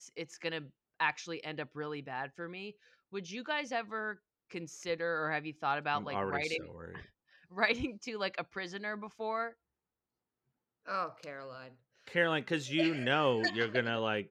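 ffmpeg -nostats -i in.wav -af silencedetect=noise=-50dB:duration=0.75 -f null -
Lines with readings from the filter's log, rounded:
silence_start: 9.52
silence_end: 10.86 | silence_duration: 1.34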